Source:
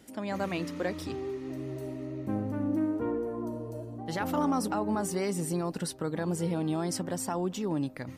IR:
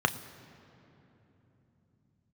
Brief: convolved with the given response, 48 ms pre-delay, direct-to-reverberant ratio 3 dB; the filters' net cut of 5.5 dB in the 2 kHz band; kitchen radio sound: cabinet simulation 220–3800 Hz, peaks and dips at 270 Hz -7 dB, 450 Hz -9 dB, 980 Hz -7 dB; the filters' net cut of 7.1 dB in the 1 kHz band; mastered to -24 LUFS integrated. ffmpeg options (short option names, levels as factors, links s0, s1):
-filter_complex "[0:a]equalizer=f=1000:t=o:g=-4.5,equalizer=f=2000:t=o:g=-5,asplit=2[s0][s1];[1:a]atrim=start_sample=2205,adelay=48[s2];[s1][s2]afir=irnorm=-1:irlink=0,volume=0.188[s3];[s0][s3]amix=inputs=2:normalize=0,highpass=220,equalizer=f=270:t=q:w=4:g=-7,equalizer=f=450:t=q:w=4:g=-9,equalizer=f=980:t=q:w=4:g=-7,lowpass=f=3800:w=0.5412,lowpass=f=3800:w=1.3066,volume=4.22"